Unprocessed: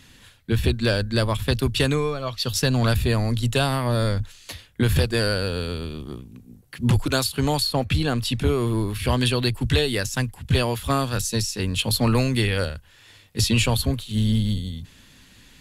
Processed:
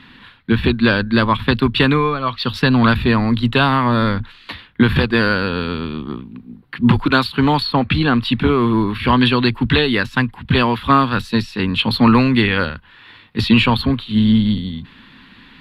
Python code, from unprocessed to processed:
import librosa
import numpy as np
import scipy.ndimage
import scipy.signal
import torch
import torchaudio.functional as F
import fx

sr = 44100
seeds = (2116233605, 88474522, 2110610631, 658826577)

y = fx.curve_eq(x, sr, hz=(100.0, 230.0, 620.0, 1000.0, 4100.0, 6400.0, 13000.0), db=(0, 12, 1, 14, 5, -20, -14))